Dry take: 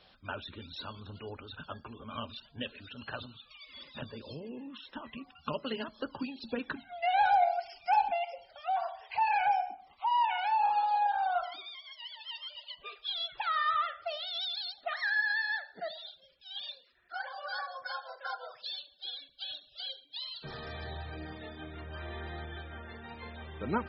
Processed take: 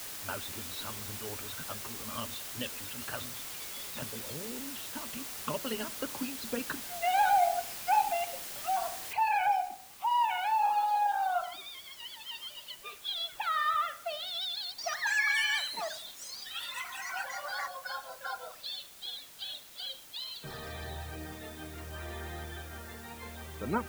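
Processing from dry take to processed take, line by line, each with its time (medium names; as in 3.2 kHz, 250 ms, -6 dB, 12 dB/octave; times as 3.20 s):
9.13 s: noise floor step -42 dB -53 dB
14.50–18.37 s: ever faster or slower copies 283 ms, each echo +5 st, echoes 3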